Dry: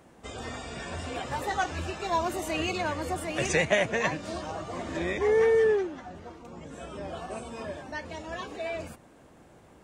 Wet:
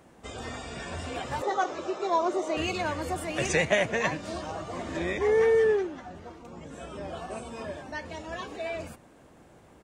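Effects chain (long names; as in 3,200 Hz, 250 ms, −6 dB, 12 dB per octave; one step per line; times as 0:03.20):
0:01.42–0:02.57: loudspeaker in its box 300–6,600 Hz, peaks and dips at 380 Hz +8 dB, 560 Hz +7 dB, 1,200 Hz +5 dB, 1,700 Hz −7 dB, 2,700 Hz −9 dB, 4,600 Hz −5 dB
far-end echo of a speakerphone 80 ms, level −22 dB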